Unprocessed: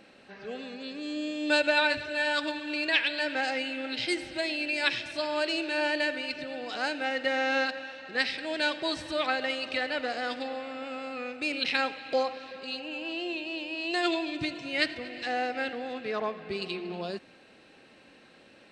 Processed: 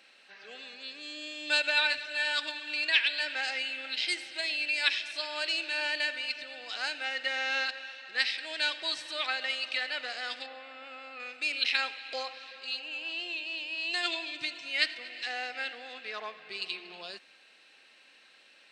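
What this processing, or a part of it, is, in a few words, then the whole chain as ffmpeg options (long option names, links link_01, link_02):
filter by subtraction: -filter_complex "[0:a]asplit=2[link_01][link_02];[link_02]lowpass=3000,volume=-1[link_03];[link_01][link_03]amix=inputs=2:normalize=0,asettb=1/sr,asplit=3[link_04][link_05][link_06];[link_04]atrim=end=10.464[link_07];[link_05]atrim=start=10.46:end=11.2,asetpts=PTS-STARTPTS,afade=type=in:duration=0.004:curve=qsin,afade=type=out:start_time=0.736:duration=0.004:curve=qsin,aemphasis=mode=reproduction:type=75kf[link_08];[link_06]atrim=start=11.196[link_09];[link_07][link_08]acrossfade=duration=0.004:curve1=hsin:curve2=qsin[link_10];[link_10][link_09]acrossfade=duration=0.004:curve1=qsin:curve2=hsin"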